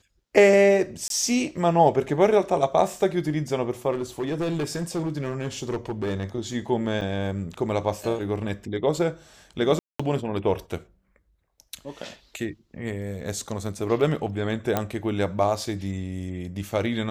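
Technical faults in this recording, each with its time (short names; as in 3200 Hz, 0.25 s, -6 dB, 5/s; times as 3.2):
1.08–1.1 gap 22 ms
3.91–6.24 clipped -23 dBFS
7.01–7.02 gap 5.5 ms
9.79–9.99 gap 0.205 s
14.77 pop -9 dBFS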